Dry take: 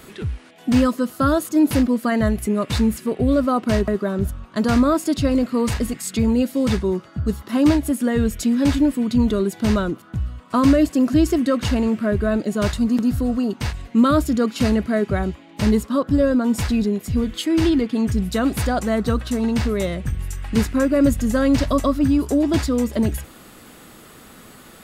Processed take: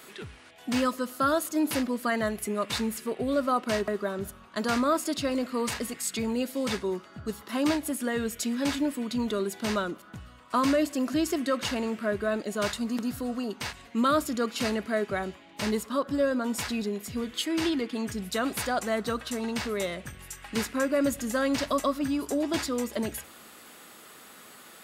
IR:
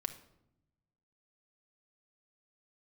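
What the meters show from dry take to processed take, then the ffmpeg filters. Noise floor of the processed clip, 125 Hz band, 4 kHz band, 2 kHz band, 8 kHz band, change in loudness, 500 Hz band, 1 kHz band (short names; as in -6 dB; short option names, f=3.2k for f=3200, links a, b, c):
-51 dBFS, -18.0 dB, -2.5 dB, -3.0 dB, -2.5 dB, -9.0 dB, -7.0 dB, -4.0 dB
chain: -filter_complex "[0:a]highpass=f=670:p=1,asplit=2[a][b];[1:a]atrim=start_sample=2205[c];[b][c]afir=irnorm=-1:irlink=0,volume=-11dB[d];[a][d]amix=inputs=2:normalize=0,volume=-4.5dB"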